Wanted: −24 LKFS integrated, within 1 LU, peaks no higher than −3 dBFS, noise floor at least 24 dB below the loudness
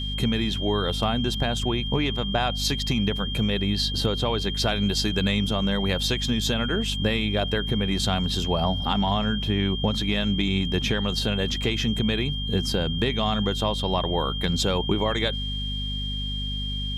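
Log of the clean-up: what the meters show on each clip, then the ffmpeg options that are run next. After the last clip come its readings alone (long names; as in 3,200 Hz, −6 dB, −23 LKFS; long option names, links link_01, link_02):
mains hum 50 Hz; hum harmonics up to 250 Hz; level of the hum −28 dBFS; interfering tone 3,200 Hz; level of the tone −31 dBFS; integrated loudness −24.5 LKFS; sample peak −10.0 dBFS; target loudness −24.0 LKFS
→ -af "bandreject=frequency=50:width_type=h:width=4,bandreject=frequency=100:width_type=h:width=4,bandreject=frequency=150:width_type=h:width=4,bandreject=frequency=200:width_type=h:width=4,bandreject=frequency=250:width_type=h:width=4"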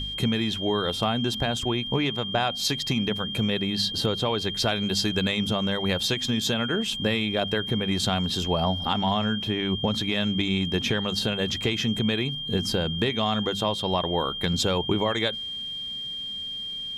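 mains hum none found; interfering tone 3,200 Hz; level of the tone −31 dBFS
→ -af "bandreject=frequency=3200:width=30"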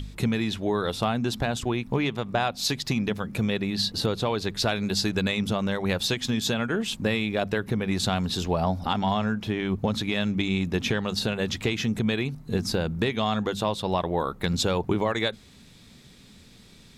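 interfering tone none found; integrated loudness −26.5 LKFS; sample peak −11.5 dBFS; target loudness −24.0 LKFS
→ -af "volume=2.5dB"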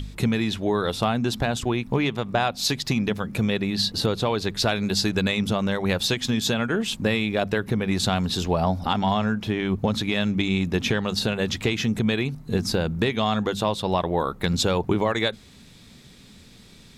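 integrated loudness −24.0 LKFS; sample peak −9.0 dBFS; background noise floor −49 dBFS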